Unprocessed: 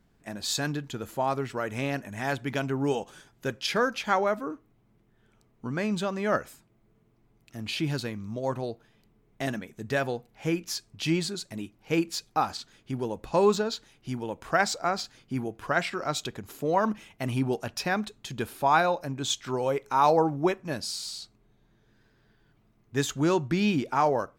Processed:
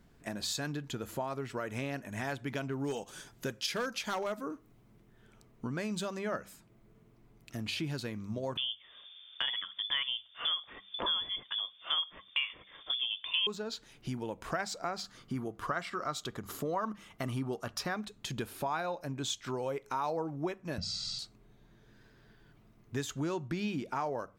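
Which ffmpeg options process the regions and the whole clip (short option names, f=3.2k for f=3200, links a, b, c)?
-filter_complex "[0:a]asettb=1/sr,asplit=3[a][b][c];[a]atrim=end=2.684[d];[b]atrim=start=2.68:end=6.19,asetpts=PTS-STARTPTS,afade=t=in:d=0.004:c=qsin,afade=t=out:st=3.506:d=0.004:c=qsin,asoftclip=type=hard:threshold=-20dB,adynamicequalizer=threshold=0.00447:dfrequency=3800:dqfactor=0.7:tfrequency=3800:tqfactor=0.7:attack=5:release=100:ratio=0.375:range=3.5:mode=boostabove:tftype=highshelf[e];[c]atrim=start=6.186[f];[d][e]acrossfade=d=0.004:c1=hsin:c2=qsin[g];[g][f]acrossfade=d=0.004:c1=qsin:c2=hsin,asettb=1/sr,asplit=3[h][i][j];[h]atrim=end=8.574[k];[i]atrim=start=8.57:end=13.47,asetpts=PTS-STARTPTS,afade=t=in:d=0.004:c=qsin,afade=t=out:st=4.896:d=0.004:c=qsin,acontrast=84,lowpass=f=3.1k:t=q:w=0.5098,lowpass=f=3.1k:t=q:w=0.6013,lowpass=f=3.1k:t=q:w=0.9,lowpass=f=3.1k:t=q:w=2.563,afreqshift=-3600[l];[j]atrim=start=13.466[m];[k][l]acrossfade=d=0.004:c1=hsin:c2=qsin[n];[n][m]acrossfade=d=0.004:c1=qsin:c2=hsin,asettb=1/sr,asplit=3[o][p][q];[o]atrim=end=15.034[r];[p]atrim=start=15.03:end=17.95,asetpts=PTS-STARTPTS,afade=t=in:d=0.004:c=qsin,afade=t=out:st=2.916:d=0.004:c=qsin,equalizer=f=1.2k:t=o:w=0.27:g=10.5,bandreject=f=2.5k:w=10[s];[q]atrim=start=17.946[t];[r][s]acrossfade=d=0.004:c1=hsin:c2=qsin[u];[u][t]acrossfade=d=0.004:c1=qsin:c2=hsin,asettb=1/sr,asplit=3[v][w][x];[v]atrim=end=20.784[y];[w]atrim=start=20.78:end=21.19,asetpts=PTS-STARTPTS,afade=t=in:d=0.004:c=qsin,afade=t=out:st=0.406:d=0.004:c=qsin,lowpass=f=5.9k:w=0.5412,lowpass=f=5.9k:w=1.3066,lowshelf=f=240:t=q:w=1.5:g=9.5,aecho=1:1:1.5:0.98,atrim=end_sample=18081[z];[x]atrim=start=21.186[aa];[y][z]acrossfade=d=0.004:c1=hsin:c2=qsin[ab];[ab][aa]acrossfade=d=0.004:c1=qsin:c2=hsin,acompressor=threshold=-40dB:ratio=3,bandreject=f=810:w=22,bandreject=f=97.92:t=h:w=4,bandreject=f=195.84:t=h:w=4,volume=3.5dB"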